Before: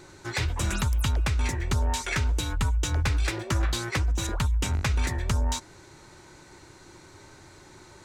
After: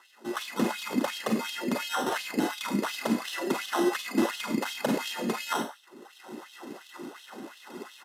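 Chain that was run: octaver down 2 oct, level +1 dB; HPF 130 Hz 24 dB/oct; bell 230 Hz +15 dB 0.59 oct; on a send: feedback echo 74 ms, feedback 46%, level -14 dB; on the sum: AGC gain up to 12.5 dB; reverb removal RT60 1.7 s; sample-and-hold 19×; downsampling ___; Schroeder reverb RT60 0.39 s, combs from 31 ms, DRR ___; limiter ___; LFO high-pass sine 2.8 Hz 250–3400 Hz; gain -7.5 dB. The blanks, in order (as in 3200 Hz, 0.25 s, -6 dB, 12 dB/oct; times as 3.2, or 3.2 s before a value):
32000 Hz, 2 dB, -11.5 dBFS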